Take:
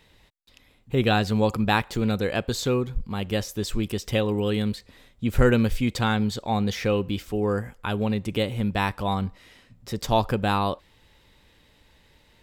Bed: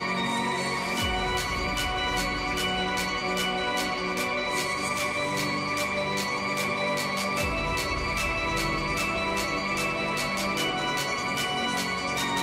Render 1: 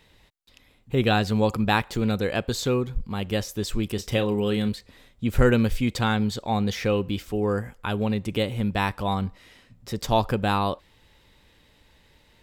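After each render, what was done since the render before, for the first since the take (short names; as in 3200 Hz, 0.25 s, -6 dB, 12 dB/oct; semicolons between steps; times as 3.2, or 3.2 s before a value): 3.95–4.69 doubler 34 ms -11 dB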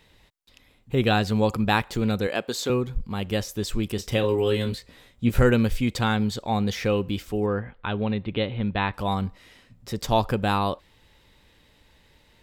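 2.27–2.7 HPF 250 Hz; 4.22–5.42 doubler 17 ms -3 dB; 7.46–8.94 elliptic low-pass 4000 Hz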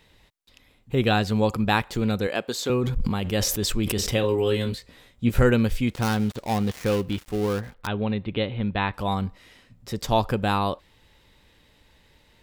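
2.66–4.14 sustainer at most 27 dB/s; 5.89–7.87 switching dead time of 0.17 ms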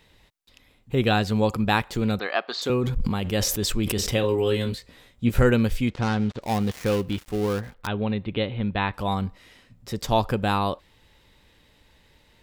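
2.19–2.62 speaker cabinet 410–4800 Hz, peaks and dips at 500 Hz -8 dB, 710 Hz +8 dB, 1200 Hz +10 dB, 1900 Hz +5 dB, 4500 Hz +5 dB; 5.89–6.42 air absorption 110 m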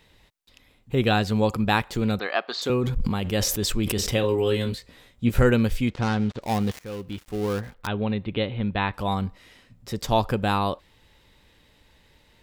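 6.79–7.61 fade in, from -17.5 dB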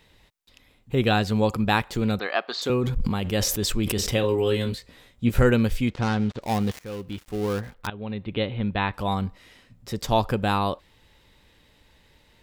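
7.9–8.42 fade in, from -14.5 dB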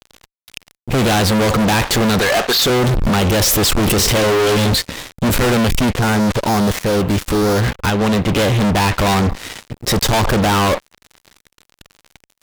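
fuzz box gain 44 dB, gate -50 dBFS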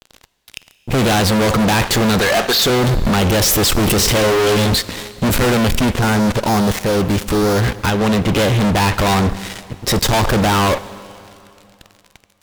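plate-style reverb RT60 2.8 s, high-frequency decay 1×, DRR 15.5 dB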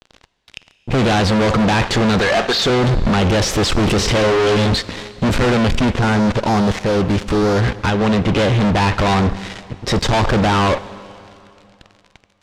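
air absorption 92 m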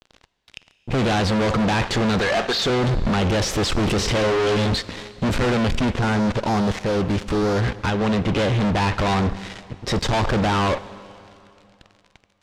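gain -5 dB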